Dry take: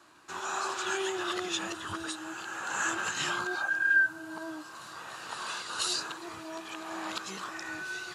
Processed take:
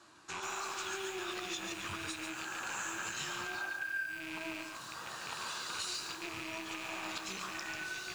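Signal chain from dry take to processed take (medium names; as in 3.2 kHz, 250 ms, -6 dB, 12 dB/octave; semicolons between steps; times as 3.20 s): rattle on loud lows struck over -54 dBFS, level -28 dBFS; distance through air 50 m; flange 0.31 Hz, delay 8.4 ms, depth 7.4 ms, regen -57%; tone controls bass +3 dB, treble +8 dB; compression 5:1, threshold -40 dBFS, peak gain reduction 14.5 dB; bit-crushed delay 142 ms, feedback 35%, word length 9-bit, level -4.5 dB; trim +2 dB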